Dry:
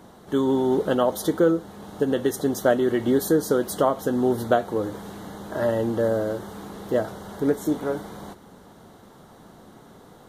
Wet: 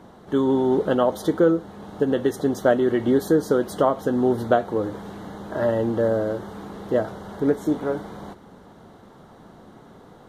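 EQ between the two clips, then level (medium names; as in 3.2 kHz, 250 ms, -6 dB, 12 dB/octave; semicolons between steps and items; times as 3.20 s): low-pass 3.1 kHz 6 dB/octave; +1.5 dB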